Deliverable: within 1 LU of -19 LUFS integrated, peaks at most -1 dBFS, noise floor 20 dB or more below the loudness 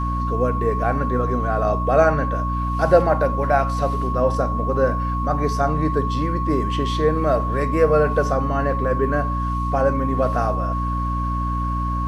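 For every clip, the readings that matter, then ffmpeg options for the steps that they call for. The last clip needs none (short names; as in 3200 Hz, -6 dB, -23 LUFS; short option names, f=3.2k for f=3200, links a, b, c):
hum 60 Hz; harmonics up to 300 Hz; hum level -21 dBFS; steady tone 1100 Hz; tone level -25 dBFS; loudness -20.5 LUFS; peak -1.5 dBFS; loudness target -19.0 LUFS
-> -af "bandreject=f=60:t=h:w=4,bandreject=f=120:t=h:w=4,bandreject=f=180:t=h:w=4,bandreject=f=240:t=h:w=4,bandreject=f=300:t=h:w=4"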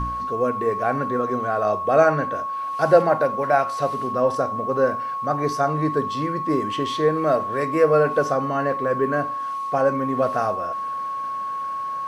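hum none; steady tone 1100 Hz; tone level -25 dBFS
-> -af "bandreject=f=1.1k:w=30"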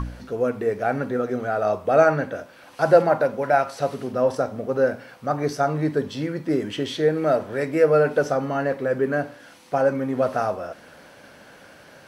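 steady tone none; loudness -23.0 LUFS; peak -2.0 dBFS; loudness target -19.0 LUFS
-> -af "volume=4dB,alimiter=limit=-1dB:level=0:latency=1"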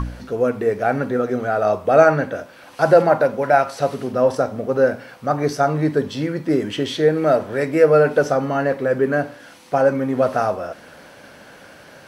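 loudness -19.0 LUFS; peak -1.0 dBFS; noise floor -44 dBFS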